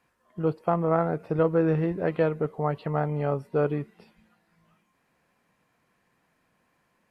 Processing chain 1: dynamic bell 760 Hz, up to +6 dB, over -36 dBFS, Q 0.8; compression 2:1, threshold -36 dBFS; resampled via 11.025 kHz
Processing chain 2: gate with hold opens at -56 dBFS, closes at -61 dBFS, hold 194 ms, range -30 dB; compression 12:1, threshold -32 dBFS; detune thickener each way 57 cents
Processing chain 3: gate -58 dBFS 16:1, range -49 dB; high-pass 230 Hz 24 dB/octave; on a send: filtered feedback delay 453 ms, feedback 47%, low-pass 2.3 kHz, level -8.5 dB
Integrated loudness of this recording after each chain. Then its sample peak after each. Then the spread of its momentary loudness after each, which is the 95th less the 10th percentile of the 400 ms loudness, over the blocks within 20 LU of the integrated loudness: -33.5 LUFS, -41.5 LUFS, -28.0 LUFS; -16.0 dBFS, -25.0 dBFS, -10.5 dBFS; 5 LU, 3 LU, 15 LU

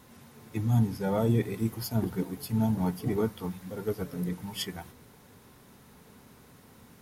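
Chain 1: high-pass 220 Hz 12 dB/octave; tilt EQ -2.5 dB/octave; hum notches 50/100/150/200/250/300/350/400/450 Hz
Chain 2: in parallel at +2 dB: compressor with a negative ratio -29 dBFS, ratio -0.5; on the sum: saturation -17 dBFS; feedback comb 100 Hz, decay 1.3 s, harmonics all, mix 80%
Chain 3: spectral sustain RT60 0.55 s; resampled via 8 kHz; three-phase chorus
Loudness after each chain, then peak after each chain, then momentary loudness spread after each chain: -30.0 LUFS, -38.5 LUFS, -33.0 LUFS; -13.5 dBFS, -24.5 dBFS, -16.5 dBFS; 11 LU, 21 LU, 10 LU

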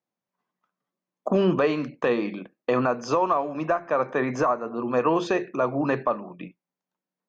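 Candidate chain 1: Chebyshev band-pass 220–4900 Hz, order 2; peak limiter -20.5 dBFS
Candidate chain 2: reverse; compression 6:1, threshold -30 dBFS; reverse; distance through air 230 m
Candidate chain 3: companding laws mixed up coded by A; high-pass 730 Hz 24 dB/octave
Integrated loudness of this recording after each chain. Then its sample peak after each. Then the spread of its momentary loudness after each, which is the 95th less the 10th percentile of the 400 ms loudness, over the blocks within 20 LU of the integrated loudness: -30.5 LUFS, -35.0 LUFS, -31.0 LUFS; -20.5 dBFS, -20.5 dBFS, -14.0 dBFS; 7 LU, 5 LU, 9 LU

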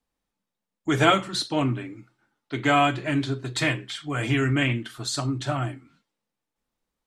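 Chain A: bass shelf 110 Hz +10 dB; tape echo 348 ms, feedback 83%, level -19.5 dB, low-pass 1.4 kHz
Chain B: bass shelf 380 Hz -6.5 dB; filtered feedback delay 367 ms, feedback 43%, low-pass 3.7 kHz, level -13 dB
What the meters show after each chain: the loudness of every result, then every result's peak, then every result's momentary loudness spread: -23.5 LUFS, -26.5 LUFS; -3.5 dBFS, -5.5 dBFS; 10 LU, 17 LU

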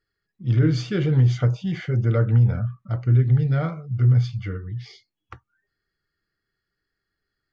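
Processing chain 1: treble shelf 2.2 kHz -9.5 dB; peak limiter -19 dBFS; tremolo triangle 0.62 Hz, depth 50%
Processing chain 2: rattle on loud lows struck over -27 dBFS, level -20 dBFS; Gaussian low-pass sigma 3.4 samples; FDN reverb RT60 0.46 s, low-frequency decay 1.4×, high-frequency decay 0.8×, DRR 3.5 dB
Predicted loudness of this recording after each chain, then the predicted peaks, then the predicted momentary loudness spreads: -29.5 LUFS, -19.0 LUFS; -19.0 dBFS, -4.0 dBFS; 9 LU, 11 LU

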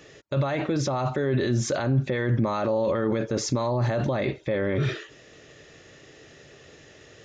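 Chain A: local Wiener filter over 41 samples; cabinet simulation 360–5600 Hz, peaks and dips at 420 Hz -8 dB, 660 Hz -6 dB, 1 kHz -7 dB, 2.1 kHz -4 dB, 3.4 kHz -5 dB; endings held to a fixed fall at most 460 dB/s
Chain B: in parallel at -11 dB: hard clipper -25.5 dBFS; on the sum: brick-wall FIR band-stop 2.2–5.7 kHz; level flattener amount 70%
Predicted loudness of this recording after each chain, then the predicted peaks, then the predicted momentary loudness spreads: -35.0 LUFS, -21.5 LUFS; -21.0 dBFS, -9.5 dBFS; 5 LU, 7 LU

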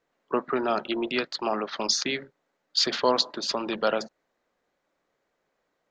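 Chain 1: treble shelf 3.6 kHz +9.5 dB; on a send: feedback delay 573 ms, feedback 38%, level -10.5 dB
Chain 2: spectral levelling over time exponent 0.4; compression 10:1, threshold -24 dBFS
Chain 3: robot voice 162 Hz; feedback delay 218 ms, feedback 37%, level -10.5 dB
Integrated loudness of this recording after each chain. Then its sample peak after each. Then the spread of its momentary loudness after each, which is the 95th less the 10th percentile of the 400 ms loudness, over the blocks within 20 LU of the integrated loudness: -23.5 LUFS, -29.5 LUFS, -29.0 LUFS; -3.5 dBFS, -8.0 dBFS, -6.0 dBFS; 16 LU, 12 LU, 13 LU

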